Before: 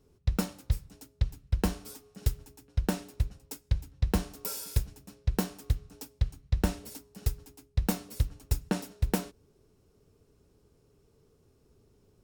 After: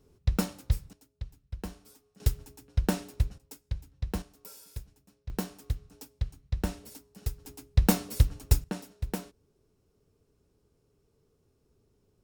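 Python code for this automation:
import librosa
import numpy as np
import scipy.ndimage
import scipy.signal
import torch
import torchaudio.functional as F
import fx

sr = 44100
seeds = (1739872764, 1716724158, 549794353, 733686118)

y = fx.gain(x, sr, db=fx.steps((0.0, 1.5), (0.93, -11.0), (2.2, 2.0), (3.38, -6.0), (4.22, -12.5), (5.3, -3.5), (7.45, 6.0), (8.64, -5.5)))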